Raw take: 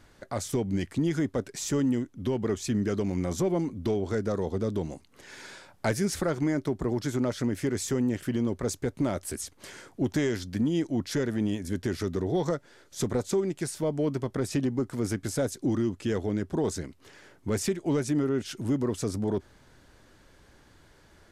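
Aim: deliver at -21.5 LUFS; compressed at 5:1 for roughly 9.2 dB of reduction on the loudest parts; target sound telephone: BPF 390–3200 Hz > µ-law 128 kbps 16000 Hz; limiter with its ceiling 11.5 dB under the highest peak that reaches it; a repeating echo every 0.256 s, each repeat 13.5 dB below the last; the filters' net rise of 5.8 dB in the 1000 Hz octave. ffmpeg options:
-af "equalizer=f=1k:t=o:g=8,acompressor=threshold=-32dB:ratio=5,alimiter=level_in=5.5dB:limit=-24dB:level=0:latency=1,volume=-5.5dB,highpass=390,lowpass=3.2k,aecho=1:1:256|512:0.211|0.0444,volume=23dB" -ar 16000 -c:a pcm_mulaw

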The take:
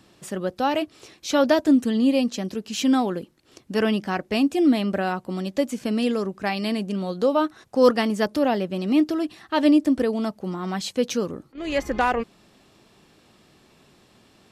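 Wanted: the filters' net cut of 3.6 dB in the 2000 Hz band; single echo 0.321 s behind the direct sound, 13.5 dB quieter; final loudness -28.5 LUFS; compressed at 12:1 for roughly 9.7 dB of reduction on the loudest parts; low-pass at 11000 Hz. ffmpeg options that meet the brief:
-af "lowpass=11k,equalizer=f=2k:t=o:g=-5,acompressor=threshold=-22dB:ratio=12,aecho=1:1:321:0.211,volume=-0.5dB"

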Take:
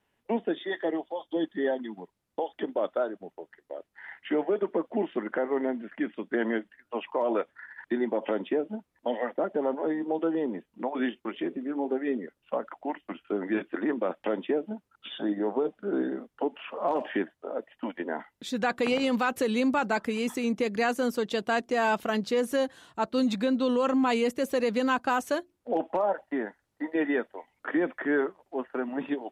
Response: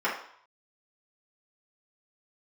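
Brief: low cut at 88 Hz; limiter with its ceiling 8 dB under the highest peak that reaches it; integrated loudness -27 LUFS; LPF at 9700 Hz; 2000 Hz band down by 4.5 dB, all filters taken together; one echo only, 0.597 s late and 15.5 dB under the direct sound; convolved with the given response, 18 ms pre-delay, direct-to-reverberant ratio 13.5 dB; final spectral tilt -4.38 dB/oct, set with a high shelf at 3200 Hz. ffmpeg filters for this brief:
-filter_complex "[0:a]highpass=88,lowpass=9.7k,equalizer=f=2k:t=o:g=-4.5,highshelf=f=3.2k:g=-5,alimiter=level_in=1dB:limit=-24dB:level=0:latency=1,volume=-1dB,aecho=1:1:597:0.168,asplit=2[a][b];[1:a]atrim=start_sample=2205,adelay=18[c];[b][c]afir=irnorm=-1:irlink=0,volume=-26dB[d];[a][d]amix=inputs=2:normalize=0,volume=8dB"

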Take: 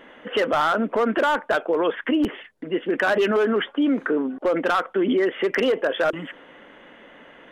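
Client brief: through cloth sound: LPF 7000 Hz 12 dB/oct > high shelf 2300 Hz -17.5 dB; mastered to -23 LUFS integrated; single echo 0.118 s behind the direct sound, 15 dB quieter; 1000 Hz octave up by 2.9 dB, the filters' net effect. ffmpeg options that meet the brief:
-af "lowpass=7k,equalizer=f=1k:t=o:g=8,highshelf=f=2.3k:g=-17.5,aecho=1:1:118:0.178,volume=-1dB"

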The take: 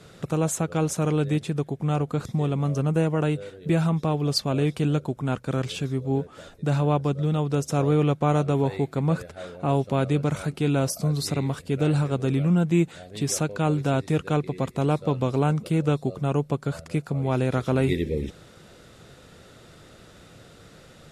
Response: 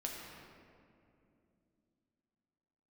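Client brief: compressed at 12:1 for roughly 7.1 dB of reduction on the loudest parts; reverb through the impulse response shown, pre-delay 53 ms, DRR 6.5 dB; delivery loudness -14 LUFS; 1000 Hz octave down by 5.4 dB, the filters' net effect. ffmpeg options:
-filter_complex "[0:a]equalizer=f=1k:t=o:g=-8,acompressor=threshold=-25dB:ratio=12,asplit=2[a][b];[1:a]atrim=start_sample=2205,adelay=53[c];[b][c]afir=irnorm=-1:irlink=0,volume=-7dB[d];[a][d]amix=inputs=2:normalize=0,volume=15.5dB"

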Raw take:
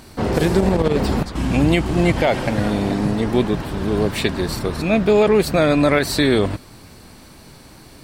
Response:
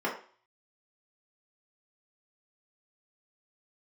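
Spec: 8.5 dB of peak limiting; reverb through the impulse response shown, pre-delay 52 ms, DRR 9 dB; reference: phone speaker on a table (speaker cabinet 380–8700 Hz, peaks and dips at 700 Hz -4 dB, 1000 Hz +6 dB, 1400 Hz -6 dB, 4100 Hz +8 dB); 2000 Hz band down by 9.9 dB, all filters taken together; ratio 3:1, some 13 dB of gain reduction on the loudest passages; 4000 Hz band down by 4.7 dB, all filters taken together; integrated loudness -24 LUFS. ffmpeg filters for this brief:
-filter_complex "[0:a]equalizer=f=2k:t=o:g=-9,equalizer=f=4k:t=o:g=-8,acompressor=threshold=-30dB:ratio=3,alimiter=level_in=1dB:limit=-24dB:level=0:latency=1,volume=-1dB,asplit=2[a][b];[1:a]atrim=start_sample=2205,adelay=52[c];[b][c]afir=irnorm=-1:irlink=0,volume=-18.5dB[d];[a][d]amix=inputs=2:normalize=0,highpass=f=380:w=0.5412,highpass=f=380:w=1.3066,equalizer=f=700:t=q:w=4:g=-4,equalizer=f=1k:t=q:w=4:g=6,equalizer=f=1.4k:t=q:w=4:g=-6,equalizer=f=4.1k:t=q:w=4:g=8,lowpass=f=8.7k:w=0.5412,lowpass=f=8.7k:w=1.3066,volume=14dB"

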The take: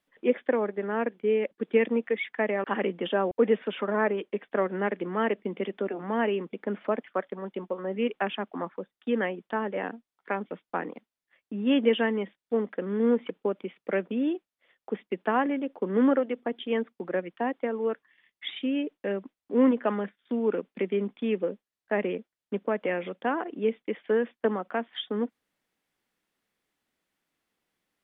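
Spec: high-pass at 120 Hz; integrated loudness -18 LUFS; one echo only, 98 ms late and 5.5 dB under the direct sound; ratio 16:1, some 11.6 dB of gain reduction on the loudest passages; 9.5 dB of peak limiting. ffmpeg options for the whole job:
-af "highpass=120,acompressor=threshold=-28dB:ratio=16,alimiter=level_in=2.5dB:limit=-24dB:level=0:latency=1,volume=-2.5dB,aecho=1:1:98:0.531,volume=18dB"

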